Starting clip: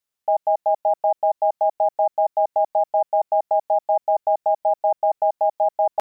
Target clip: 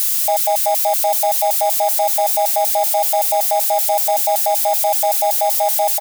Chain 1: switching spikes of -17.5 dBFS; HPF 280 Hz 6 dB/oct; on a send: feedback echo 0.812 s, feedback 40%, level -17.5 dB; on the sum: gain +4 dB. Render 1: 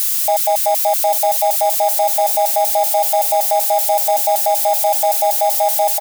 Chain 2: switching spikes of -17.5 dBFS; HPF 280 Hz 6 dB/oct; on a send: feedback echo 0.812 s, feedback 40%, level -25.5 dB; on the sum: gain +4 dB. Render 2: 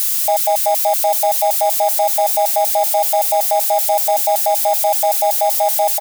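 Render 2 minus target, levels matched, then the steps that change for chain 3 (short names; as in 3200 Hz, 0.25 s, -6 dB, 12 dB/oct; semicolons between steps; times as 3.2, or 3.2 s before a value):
250 Hz band +3.0 dB
change: HPF 560 Hz 6 dB/oct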